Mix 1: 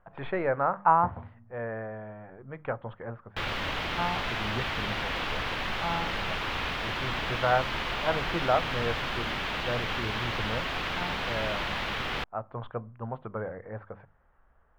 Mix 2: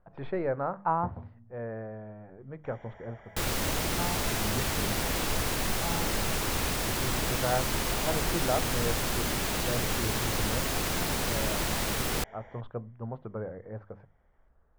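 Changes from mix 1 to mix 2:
first sound: unmuted; second sound +5.5 dB; master: remove FFT filter 390 Hz 0 dB, 1.1 kHz +8 dB, 3.2 kHz +9 dB, 8.5 kHz -19 dB

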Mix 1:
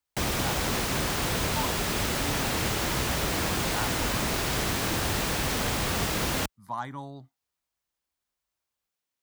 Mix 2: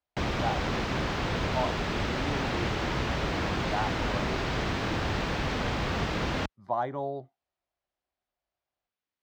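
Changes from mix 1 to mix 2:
speech: add high-order bell 510 Hz +14 dB 1.3 oct; master: add distance through air 190 m

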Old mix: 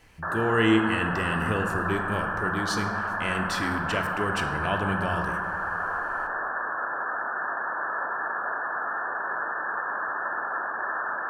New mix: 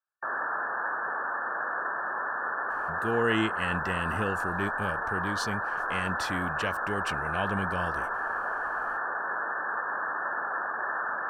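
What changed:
speech: entry +2.70 s; reverb: off

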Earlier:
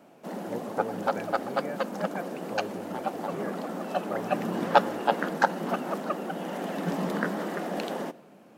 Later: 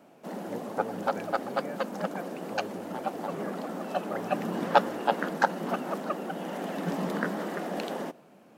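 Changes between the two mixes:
speech -3.5 dB; background: send -6.5 dB

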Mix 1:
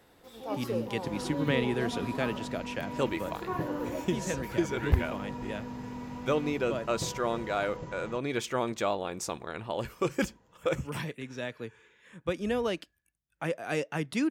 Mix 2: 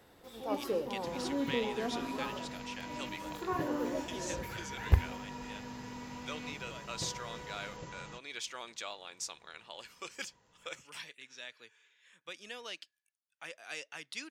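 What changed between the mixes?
speech: add band-pass filter 4.7 kHz, Q 0.95; second sound: add tilt shelf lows -6.5 dB, about 1.5 kHz

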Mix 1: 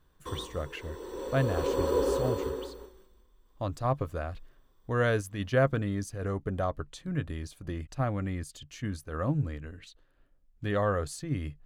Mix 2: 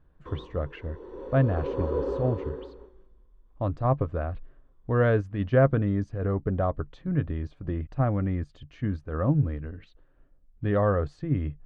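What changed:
speech +6.5 dB; master: add tape spacing loss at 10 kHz 43 dB

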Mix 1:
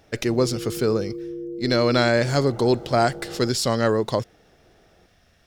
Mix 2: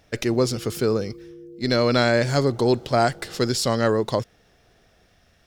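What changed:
background -9.5 dB; reverb: on, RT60 1.2 s

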